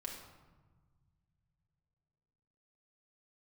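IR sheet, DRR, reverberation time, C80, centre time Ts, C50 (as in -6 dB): -1.0 dB, 1.4 s, 6.5 dB, 42 ms, 4.0 dB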